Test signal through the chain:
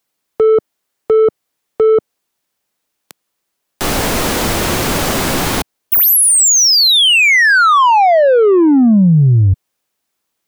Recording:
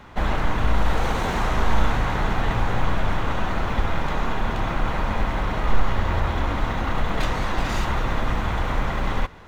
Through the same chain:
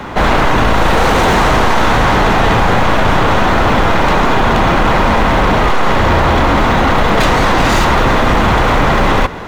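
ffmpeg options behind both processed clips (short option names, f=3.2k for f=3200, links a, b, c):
-filter_complex "[0:a]equalizer=f=310:w=0.3:g=4.5,apsyclip=20dB,acrossover=split=170[a][b];[b]acontrast=21[c];[a][c]amix=inputs=2:normalize=0,volume=-7dB"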